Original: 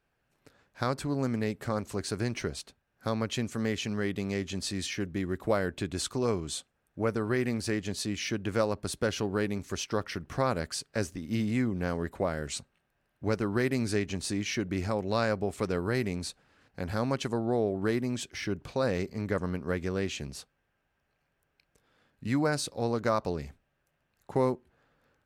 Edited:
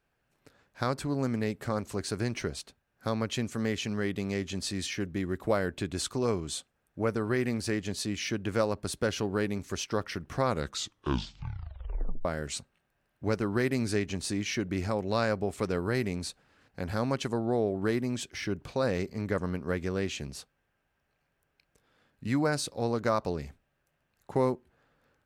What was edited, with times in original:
10.44 tape stop 1.81 s

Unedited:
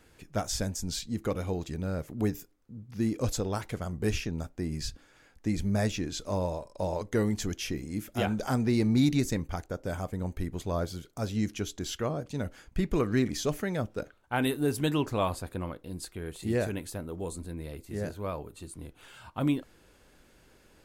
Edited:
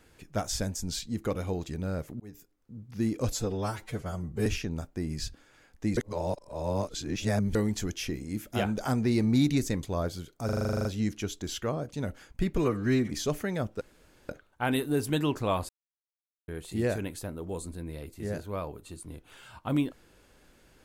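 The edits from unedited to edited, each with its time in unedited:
2.2–2.75 fade in
3.32–4.08 stretch 1.5×
5.59–7.17 reverse
9.45–10.6 cut
11.22 stutter 0.04 s, 11 plays
12.94–13.3 stretch 1.5×
14 insert room tone 0.48 s
15.4–16.19 mute

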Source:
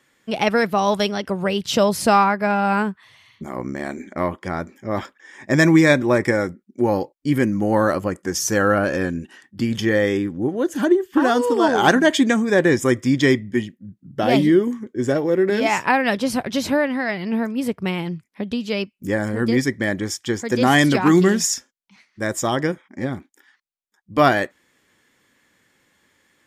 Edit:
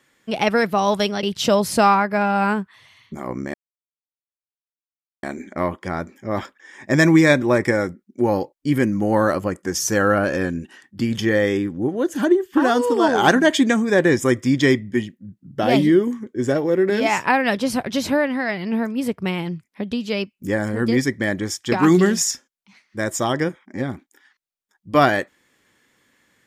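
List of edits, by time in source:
1.23–1.52 cut
3.83 insert silence 1.69 s
20.32–20.95 cut

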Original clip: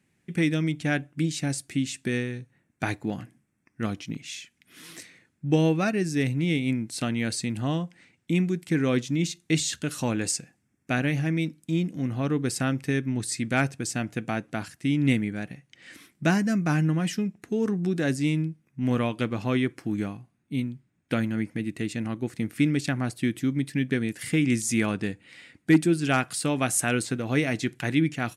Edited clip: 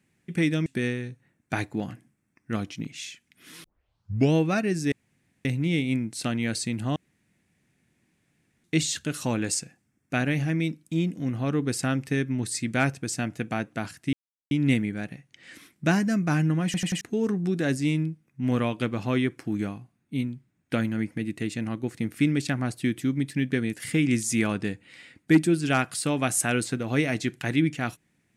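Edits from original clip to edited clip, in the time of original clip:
0.66–1.96 cut
4.94 tape start 0.69 s
6.22 insert room tone 0.53 s
7.73–9.41 room tone
14.9 insert silence 0.38 s
17.04 stutter in place 0.09 s, 4 plays

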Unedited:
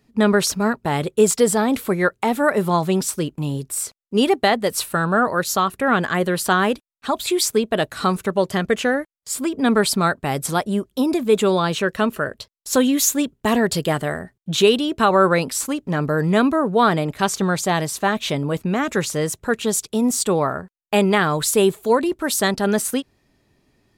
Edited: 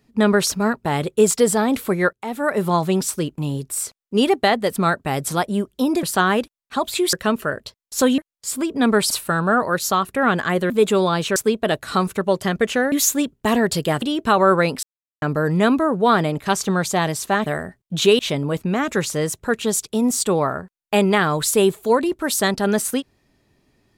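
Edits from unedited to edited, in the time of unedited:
2.13–2.67 fade in, from -16 dB
4.76–6.35 swap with 9.94–11.21
7.45–9.01 swap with 11.87–12.92
14.02–14.75 move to 18.19
15.56–15.95 mute

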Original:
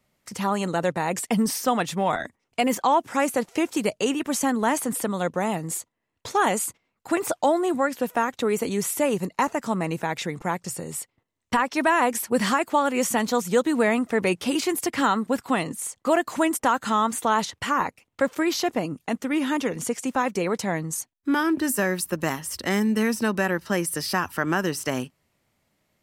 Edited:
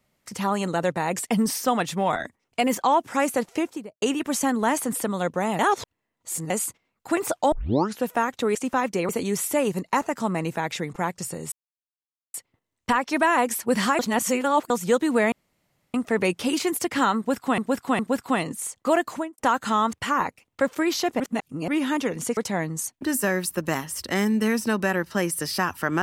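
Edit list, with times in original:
3.47–4.02 studio fade out
5.59–6.5 reverse
7.52 tape start 0.48 s
10.98 insert silence 0.82 s
12.63–13.34 reverse
13.96 insert room tone 0.62 s
15.19–15.6 loop, 3 plays
16.25–16.58 studio fade out
17.13–17.53 cut
18.8–19.28 reverse
19.97–20.51 move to 8.55
21.15–21.56 cut

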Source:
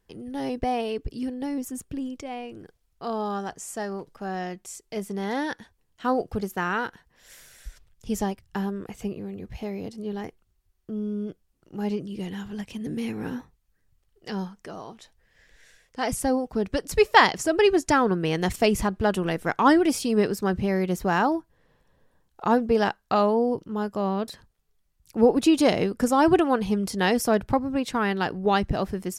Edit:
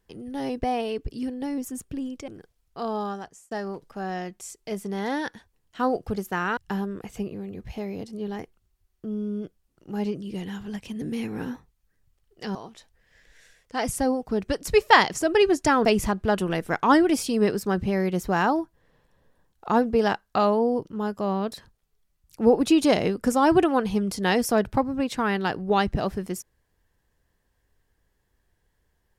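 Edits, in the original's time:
2.28–2.53 cut
3.26–3.76 fade out linear
6.82–8.42 cut
14.4–14.79 cut
18.09–18.61 cut

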